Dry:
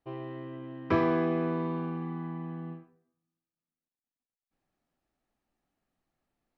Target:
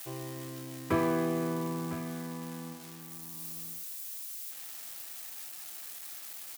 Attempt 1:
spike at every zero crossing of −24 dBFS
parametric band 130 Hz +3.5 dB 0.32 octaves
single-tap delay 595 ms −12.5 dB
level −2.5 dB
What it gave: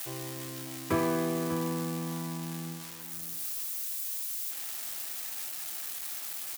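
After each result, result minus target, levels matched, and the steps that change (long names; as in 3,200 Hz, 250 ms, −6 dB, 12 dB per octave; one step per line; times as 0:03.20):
echo 410 ms early; spike at every zero crossing: distortion +6 dB
change: single-tap delay 1,005 ms −12.5 dB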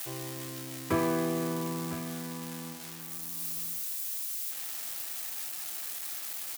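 spike at every zero crossing: distortion +6 dB
change: spike at every zero crossing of −30 dBFS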